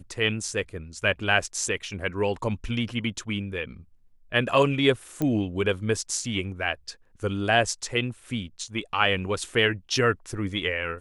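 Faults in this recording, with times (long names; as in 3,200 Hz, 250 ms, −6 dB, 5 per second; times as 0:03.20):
0:05.22: click −14 dBFS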